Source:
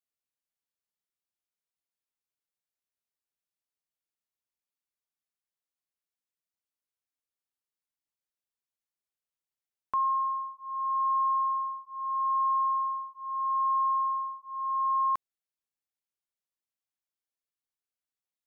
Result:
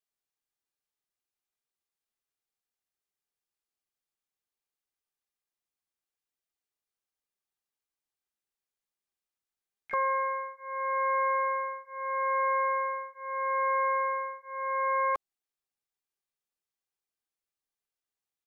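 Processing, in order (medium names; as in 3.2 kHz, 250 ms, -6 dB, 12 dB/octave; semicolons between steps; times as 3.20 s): peaking EQ 750 Hz +2 dB 3 oct; comb 2.5 ms, depth 51%; harmony voices -12 st -6 dB, +7 st -13 dB, +12 st -12 dB; trim -3 dB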